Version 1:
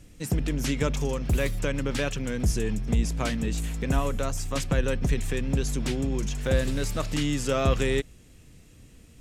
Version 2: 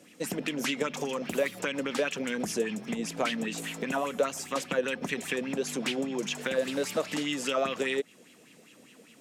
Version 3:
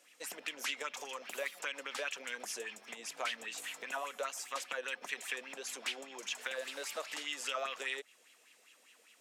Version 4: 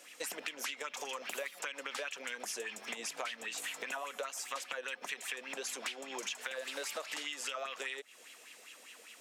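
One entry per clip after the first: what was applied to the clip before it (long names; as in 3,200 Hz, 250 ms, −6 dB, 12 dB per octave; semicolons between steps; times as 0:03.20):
Chebyshev high-pass filter 210 Hz, order 3; downward compressor, threshold −30 dBFS, peak gain reduction 8.5 dB; auto-filter bell 5 Hz 460–3,100 Hz +13 dB
high-pass filter 840 Hz 12 dB per octave; level −5 dB
downward compressor 6 to 1, threshold −47 dBFS, peak gain reduction 14 dB; level +9.5 dB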